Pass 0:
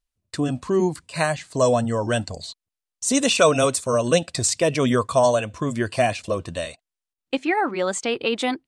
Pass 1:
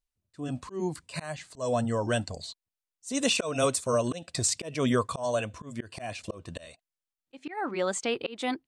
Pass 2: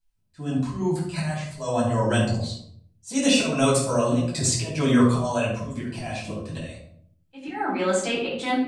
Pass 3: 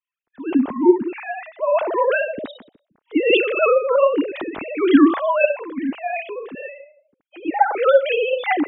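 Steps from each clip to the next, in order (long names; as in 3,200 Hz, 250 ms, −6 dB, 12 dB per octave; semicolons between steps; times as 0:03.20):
volume swells 248 ms; level −5 dB
rectangular room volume 850 cubic metres, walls furnished, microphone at 8.3 metres; level −4 dB
three sine waves on the formant tracks; level +5 dB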